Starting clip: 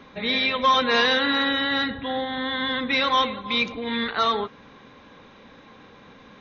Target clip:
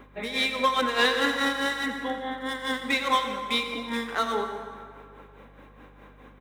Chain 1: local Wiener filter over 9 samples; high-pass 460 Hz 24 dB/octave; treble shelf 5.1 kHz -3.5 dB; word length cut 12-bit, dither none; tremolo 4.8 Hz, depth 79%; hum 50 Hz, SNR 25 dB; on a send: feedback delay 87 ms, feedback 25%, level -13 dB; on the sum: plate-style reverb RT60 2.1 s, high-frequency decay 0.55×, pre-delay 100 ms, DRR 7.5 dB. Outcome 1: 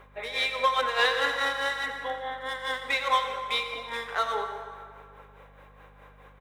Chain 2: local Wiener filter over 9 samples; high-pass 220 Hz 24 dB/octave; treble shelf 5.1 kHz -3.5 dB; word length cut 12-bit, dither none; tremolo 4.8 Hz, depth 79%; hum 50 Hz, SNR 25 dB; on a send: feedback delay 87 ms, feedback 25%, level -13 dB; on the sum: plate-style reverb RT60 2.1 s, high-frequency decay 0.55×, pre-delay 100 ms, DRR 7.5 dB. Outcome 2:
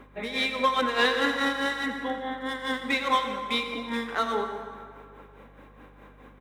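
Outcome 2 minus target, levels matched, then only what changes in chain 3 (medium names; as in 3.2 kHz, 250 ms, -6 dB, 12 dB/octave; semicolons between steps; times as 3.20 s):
8 kHz band -3.5 dB
change: treble shelf 5.1 kHz +3 dB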